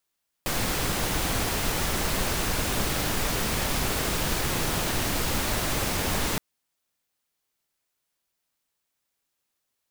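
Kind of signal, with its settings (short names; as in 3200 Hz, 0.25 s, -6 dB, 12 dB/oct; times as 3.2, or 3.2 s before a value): noise pink, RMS -26.5 dBFS 5.92 s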